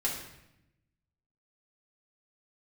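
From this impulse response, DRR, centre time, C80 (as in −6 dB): −5.0 dB, 39 ms, 7.0 dB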